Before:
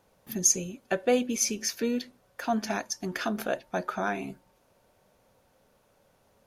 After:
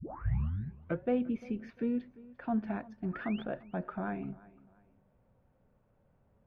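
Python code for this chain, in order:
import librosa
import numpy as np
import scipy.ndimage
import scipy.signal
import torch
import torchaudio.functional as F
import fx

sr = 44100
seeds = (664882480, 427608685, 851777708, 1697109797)

y = fx.tape_start_head(x, sr, length_s=1.05)
y = fx.bass_treble(y, sr, bass_db=11, treble_db=-12)
y = fx.spec_paint(y, sr, seeds[0], shape='rise', start_s=3.13, length_s=0.31, low_hz=1200.0, high_hz=3700.0, level_db=-35.0)
y = fx.air_absorb(y, sr, metres=480.0)
y = fx.echo_feedback(y, sr, ms=347, feedback_pct=33, wet_db=-21.0)
y = y * 10.0 ** (-7.5 / 20.0)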